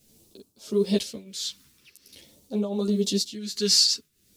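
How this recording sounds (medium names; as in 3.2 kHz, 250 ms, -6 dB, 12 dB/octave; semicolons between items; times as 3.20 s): a quantiser's noise floor 10-bit, dither triangular; phasing stages 2, 0.46 Hz, lowest notch 650–1800 Hz; tremolo triangle 1.4 Hz, depth 85%; a shimmering, thickened sound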